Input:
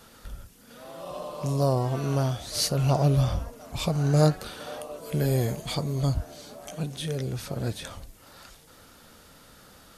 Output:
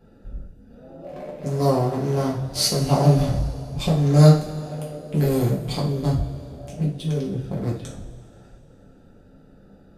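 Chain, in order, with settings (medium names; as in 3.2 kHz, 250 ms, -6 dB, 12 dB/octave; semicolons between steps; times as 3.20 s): local Wiener filter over 41 samples; two-slope reverb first 0.39 s, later 2.8 s, from -18 dB, DRR -5 dB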